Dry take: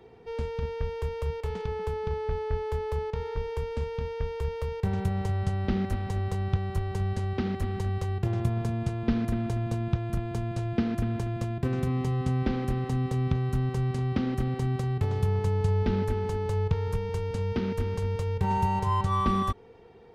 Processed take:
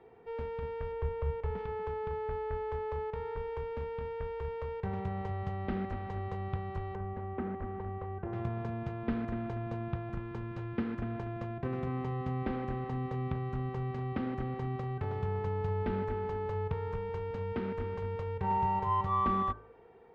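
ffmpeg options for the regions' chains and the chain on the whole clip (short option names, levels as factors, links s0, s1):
-filter_complex "[0:a]asettb=1/sr,asplit=3[s0][s1][s2];[s0]atrim=end=0.924[s3];[s1]atrim=start=0.92:end=1.58,asetpts=PTS-STARTPTS,afade=t=in:d=0.004:c=qsin,afade=t=out:st=0.656:d=0.004:c=qsin,lowpass=f=3200:p=1,lowshelf=f=180:g=8.5[s4];[s2]atrim=start=1.576[s5];[s3][s4]acrossfade=d=0.004:c1=hsin:c2=qsin[s6];[s6][s5]acrossfade=d=0.004:c1=qsin:c2=hsin,asettb=1/sr,asplit=3[s7][s8][s9];[s7]atrim=end=6.954[s10];[s8]atrim=start=6.95:end=8.33,asetpts=PTS-STARTPTS,afade=t=in:d=0.004:c=qsin,afade=t=out:st=1.376:d=0.004:c=qsin,lowpass=1600,equalizer=f=120:w=4.4:g=-11.5[s11];[s9]atrim=start=8.326[s12];[s10][s11]acrossfade=d=0.004:c1=hsin:c2=qsin[s13];[s13][s12]acrossfade=d=0.004:c1=qsin:c2=hsin,asettb=1/sr,asplit=3[s14][s15][s16];[s14]atrim=end=10.094[s17];[s15]atrim=start=10.09:end=11.02,asetpts=PTS-STARTPTS,afade=t=in:d=0.004:c=qsin,afade=t=out:st=0.926:d=0.004:c=qsin,asuperstop=centerf=650:order=12:qfactor=7.1,aeval=exprs='sgn(val(0))*max(abs(val(0))-0.001,0)':c=same[s18];[s16]atrim=start=11.016[s19];[s17][s18]acrossfade=d=0.004:c1=hsin:c2=qsin[s20];[s20][s19]acrossfade=d=0.004:c1=qsin:c2=hsin,lowpass=1800,lowshelf=f=350:g=-10,bandreject=f=53.19:t=h:w=4,bandreject=f=106.38:t=h:w=4,bandreject=f=159.57:t=h:w=4,bandreject=f=212.76:t=h:w=4,bandreject=f=265.95:t=h:w=4,bandreject=f=319.14:t=h:w=4,bandreject=f=372.33:t=h:w=4,bandreject=f=425.52:t=h:w=4,bandreject=f=478.71:t=h:w=4,bandreject=f=531.9:t=h:w=4,bandreject=f=585.09:t=h:w=4,bandreject=f=638.28:t=h:w=4,bandreject=f=691.47:t=h:w=4,bandreject=f=744.66:t=h:w=4,bandreject=f=797.85:t=h:w=4,bandreject=f=851.04:t=h:w=4,bandreject=f=904.23:t=h:w=4,bandreject=f=957.42:t=h:w=4,bandreject=f=1010.61:t=h:w=4,bandreject=f=1063.8:t=h:w=4,bandreject=f=1116.99:t=h:w=4,bandreject=f=1170.18:t=h:w=4,bandreject=f=1223.37:t=h:w=4,bandreject=f=1276.56:t=h:w=4,bandreject=f=1329.75:t=h:w=4,bandreject=f=1382.94:t=h:w=4,bandreject=f=1436.13:t=h:w=4,bandreject=f=1489.32:t=h:w=4,bandreject=f=1542.51:t=h:w=4,bandreject=f=1595.7:t=h:w=4,bandreject=f=1648.89:t=h:w=4,bandreject=f=1702.08:t=h:w=4"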